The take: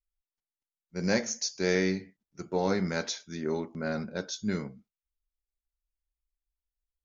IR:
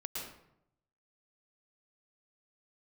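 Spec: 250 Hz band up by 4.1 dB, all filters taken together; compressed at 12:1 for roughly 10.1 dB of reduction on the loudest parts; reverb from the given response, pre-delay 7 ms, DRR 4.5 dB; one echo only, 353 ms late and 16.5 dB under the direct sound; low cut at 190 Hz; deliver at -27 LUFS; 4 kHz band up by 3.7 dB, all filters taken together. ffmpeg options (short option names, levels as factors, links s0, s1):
-filter_complex "[0:a]highpass=190,equalizer=f=250:t=o:g=8,equalizer=f=4000:t=o:g=4.5,acompressor=threshold=0.0355:ratio=12,aecho=1:1:353:0.15,asplit=2[s0][s1];[1:a]atrim=start_sample=2205,adelay=7[s2];[s1][s2]afir=irnorm=-1:irlink=0,volume=0.562[s3];[s0][s3]amix=inputs=2:normalize=0,volume=2.24"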